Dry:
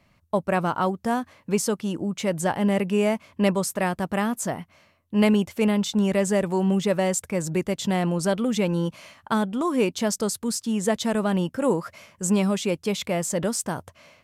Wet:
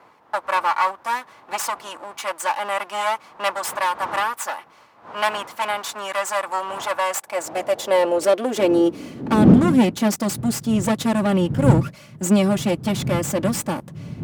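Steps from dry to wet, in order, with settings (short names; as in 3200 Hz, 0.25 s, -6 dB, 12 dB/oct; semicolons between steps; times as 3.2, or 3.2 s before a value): minimum comb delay 3.5 ms; wind noise 120 Hz -23 dBFS; high-pass sweep 1000 Hz -> 140 Hz, 6.89–10.41; gain +2.5 dB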